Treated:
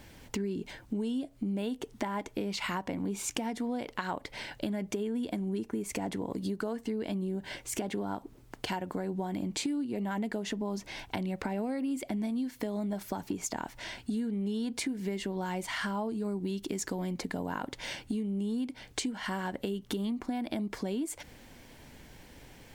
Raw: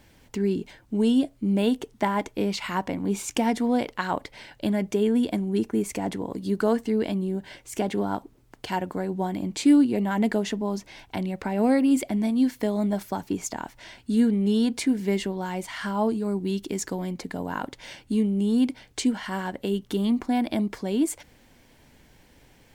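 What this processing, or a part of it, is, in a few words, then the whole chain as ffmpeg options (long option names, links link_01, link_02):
serial compression, peaks first: -af "acompressor=threshold=-30dB:ratio=5,acompressor=threshold=-37dB:ratio=2,volume=3.5dB"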